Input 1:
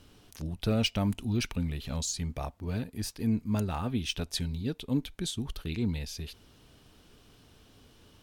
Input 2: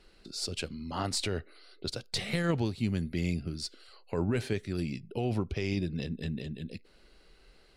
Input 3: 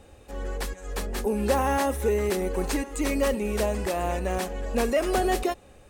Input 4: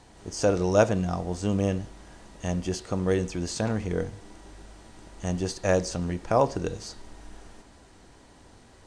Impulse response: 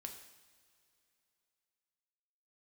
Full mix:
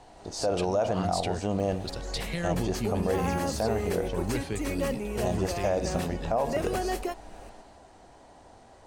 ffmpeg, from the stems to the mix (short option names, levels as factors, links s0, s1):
-filter_complex "[0:a]highshelf=f=10000:g=-10.5,volume=0.188[s0];[1:a]volume=0.794[s1];[2:a]bandreject=f=3700:w=12,acompressor=mode=upward:threshold=0.0355:ratio=2.5,adelay=1600,volume=0.501[s2];[3:a]equalizer=f=710:w=1.4:g=12.5,volume=0.631[s3];[s0][s1][s2][s3]amix=inputs=4:normalize=0,alimiter=limit=0.133:level=0:latency=1:release=48"